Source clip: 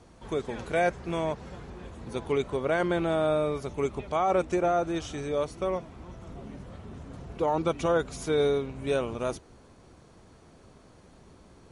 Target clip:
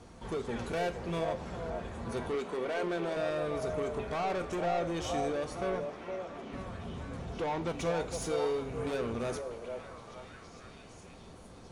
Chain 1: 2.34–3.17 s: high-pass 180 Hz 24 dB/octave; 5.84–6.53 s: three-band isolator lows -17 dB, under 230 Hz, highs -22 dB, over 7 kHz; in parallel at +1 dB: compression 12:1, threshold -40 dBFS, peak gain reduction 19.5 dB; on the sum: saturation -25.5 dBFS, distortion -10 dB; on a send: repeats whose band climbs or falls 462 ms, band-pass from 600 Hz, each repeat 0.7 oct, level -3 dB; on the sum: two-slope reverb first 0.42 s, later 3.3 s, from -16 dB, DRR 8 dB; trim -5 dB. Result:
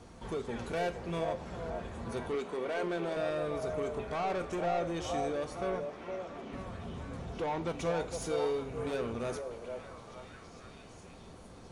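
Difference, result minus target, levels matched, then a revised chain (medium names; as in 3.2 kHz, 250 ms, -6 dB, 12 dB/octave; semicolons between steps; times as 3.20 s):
compression: peak gain reduction +8.5 dB
2.34–3.17 s: high-pass 180 Hz 24 dB/octave; 5.84–6.53 s: three-band isolator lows -17 dB, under 230 Hz, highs -22 dB, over 7 kHz; in parallel at +1 dB: compression 12:1, threshold -30.5 dBFS, peak gain reduction 10.5 dB; on the sum: saturation -25.5 dBFS, distortion -9 dB; on a send: repeats whose band climbs or falls 462 ms, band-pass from 600 Hz, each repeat 0.7 oct, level -3 dB; on the sum: two-slope reverb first 0.42 s, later 3.3 s, from -16 dB, DRR 8 dB; trim -5 dB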